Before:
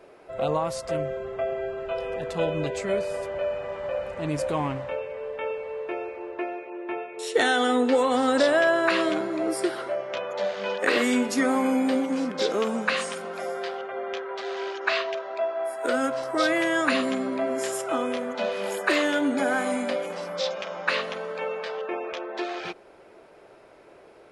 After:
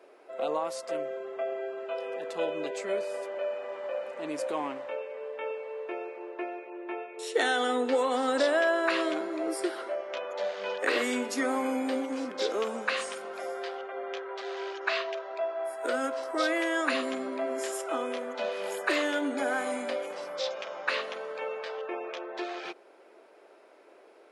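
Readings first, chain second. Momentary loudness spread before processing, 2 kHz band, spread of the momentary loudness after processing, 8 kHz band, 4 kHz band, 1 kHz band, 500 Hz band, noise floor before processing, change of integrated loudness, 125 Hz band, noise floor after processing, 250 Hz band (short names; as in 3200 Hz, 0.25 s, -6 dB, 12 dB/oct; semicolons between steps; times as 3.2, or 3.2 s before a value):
11 LU, -4.5 dB, 10 LU, -4.5 dB, -4.5 dB, -4.5 dB, -4.5 dB, -51 dBFS, -5.0 dB, under -20 dB, -56 dBFS, -7.5 dB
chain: HPF 270 Hz 24 dB/oct; gain -4.5 dB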